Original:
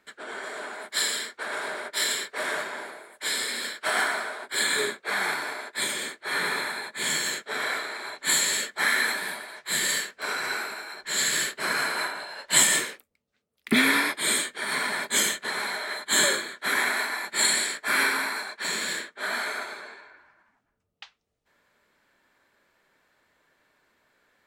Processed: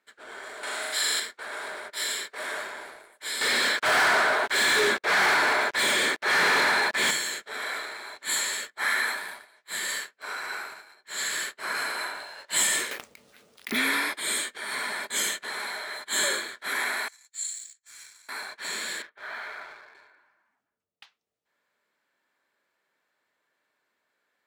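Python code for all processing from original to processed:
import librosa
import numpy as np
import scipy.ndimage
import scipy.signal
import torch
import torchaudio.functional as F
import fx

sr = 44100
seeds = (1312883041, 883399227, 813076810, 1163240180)

y = fx.chain(x, sr, fx.peak_eq(hz=180.0, db=-4.5, octaves=1.0),
    fx.room_flutter(wall_m=7.1, rt60_s=1.3),
    fx.band_squash(depth_pct=70), at=(0.63, 1.2))
y = fx.chain(y, sr, fx.leveller(passes=5),
    fx.lowpass(hz=3200.0, slope=6), at=(3.41, 7.11))
y = fx.chain(y, sr, fx.dynamic_eq(hz=1100.0, q=0.79, threshold_db=-39.0, ratio=4.0, max_db=5),
    fx.upward_expand(threshold_db=-42.0, expansion=1.5), at=(8.35, 11.75))
y = fx.chain(y, sr, fx.resample_bad(factor=3, down='none', up='hold'),
    fx.env_flatten(amount_pct=50), at=(12.91, 13.77))
y = fx.chain(y, sr, fx.bandpass_q(hz=6700.0, q=5.2),
    fx.transient(attack_db=5, sustain_db=-12), at=(17.08, 18.29))
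y = fx.chain(y, sr, fx.highpass(hz=670.0, slope=6),
    fx.air_absorb(metres=320.0), at=(19.02, 19.95))
y = fx.highpass(y, sr, hz=340.0, slope=6)
y = fx.leveller(y, sr, passes=1)
y = fx.transient(y, sr, attack_db=-3, sustain_db=4)
y = y * 10.0 ** (-7.0 / 20.0)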